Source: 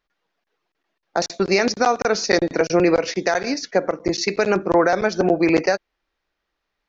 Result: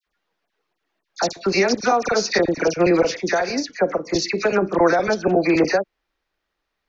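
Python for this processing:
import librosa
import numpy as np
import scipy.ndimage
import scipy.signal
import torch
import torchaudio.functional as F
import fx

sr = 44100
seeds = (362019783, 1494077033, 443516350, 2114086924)

y = fx.dispersion(x, sr, late='lows', ms=68.0, hz=1700.0)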